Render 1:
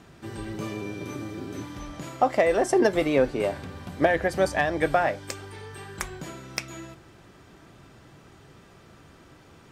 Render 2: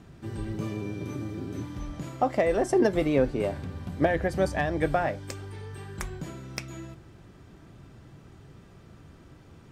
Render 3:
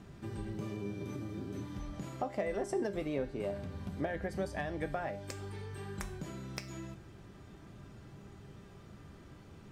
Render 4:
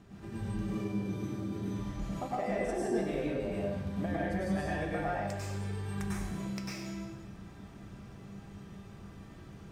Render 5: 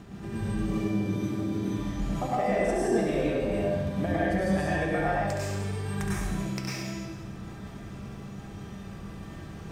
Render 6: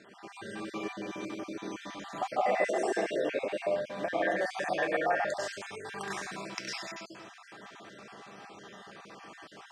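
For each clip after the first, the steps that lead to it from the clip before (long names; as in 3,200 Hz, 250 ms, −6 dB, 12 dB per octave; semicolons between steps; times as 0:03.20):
low-shelf EQ 290 Hz +11 dB; level −5.5 dB
downward compressor 2 to 1, threshold −38 dBFS, peak gain reduction 11.5 dB; tuned comb filter 200 Hz, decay 0.54 s, harmonics all, mix 70%; level +7 dB
convolution reverb, pre-delay 93 ms, DRR −6.5 dB; level −4 dB
reversed playback; upward compression, threshold −42 dBFS; reversed playback; flutter between parallel walls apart 11.7 metres, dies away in 0.61 s; level +6 dB
time-frequency cells dropped at random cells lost 32%; band-pass filter 530–6,600 Hz; level +2.5 dB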